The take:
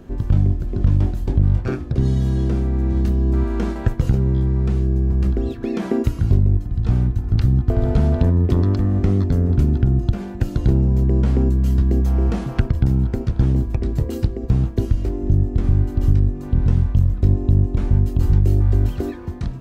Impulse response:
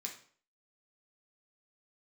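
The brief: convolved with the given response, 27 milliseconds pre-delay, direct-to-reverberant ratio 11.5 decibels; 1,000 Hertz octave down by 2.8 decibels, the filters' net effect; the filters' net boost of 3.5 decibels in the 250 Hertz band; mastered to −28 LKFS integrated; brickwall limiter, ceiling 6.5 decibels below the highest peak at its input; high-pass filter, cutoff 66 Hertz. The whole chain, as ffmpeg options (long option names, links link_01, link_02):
-filter_complex "[0:a]highpass=66,equalizer=frequency=250:width_type=o:gain=5,equalizer=frequency=1000:width_type=o:gain=-4.5,alimiter=limit=-11dB:level=0:latency=1,asplit=2[link_01][link_02];[1:a]atrim=start_sample=2205,adelay=27[link_03];[link_02][link_03]afir=irnorm=-1:irlink=0,volume=-9.5dB[link_04];[link_01][link_04]amix=inputs=2:normalize=0,volume=-7dB"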